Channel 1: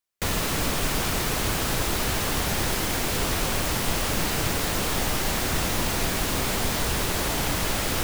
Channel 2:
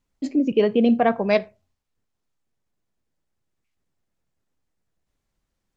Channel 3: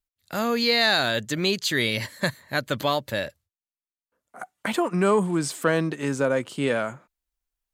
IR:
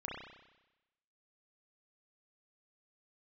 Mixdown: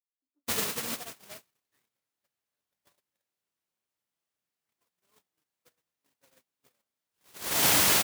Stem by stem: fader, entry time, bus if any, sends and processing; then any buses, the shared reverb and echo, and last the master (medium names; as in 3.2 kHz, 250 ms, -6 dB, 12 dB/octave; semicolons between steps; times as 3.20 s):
+1.0 dB, 0.25 s, no bus, send -13.5 dB, auto duck -12 dB, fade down 1.90 s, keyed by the third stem
-2.0 dB, 0.00 s, bus A, no send, none
-11.0 dB, 0.00 s, bus A, no send, de-esser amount 80%; rippled EQ curve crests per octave 1, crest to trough 7 dB
bus A: 0.0 dB, compression 6:1, threshold -31 dBFS, peak gain reduction 15 dB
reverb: on, RT60 1.0 s, pre-delay 31 ms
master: high-pass 97 Hz 12 dB/octave; gate -25 dBFS, range -59 dB; tilt EQ +2 dB/octave